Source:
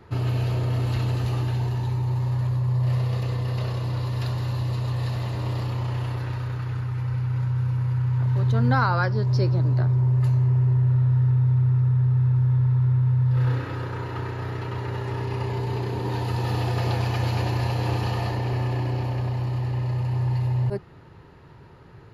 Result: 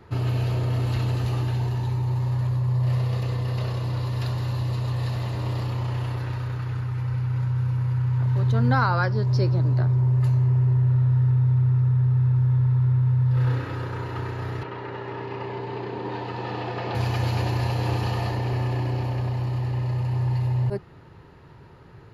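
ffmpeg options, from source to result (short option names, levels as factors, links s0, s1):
-filter_complex "[0:a]asettb=1/sr,asplit=3[s0][s1][s2];[s0]atrim=end=14.634[s3];[s1]atrim=start=14.63:end=16.95,asetpts=PTS-STARTPTS,afade=t=in:d=0.004:c=qsin,afade=t=out:st=2.316:d=0.004:c=qsin,highpass=210,lowpass=3200[s4];[s2]atrim=start=16.946[s5];[s3][s4]acrossfade=d=0.004:c1=hsin:c2=qsin[s6];[s6][s5]acrossfade=d=0.004:c1=qsin:c2=hsin"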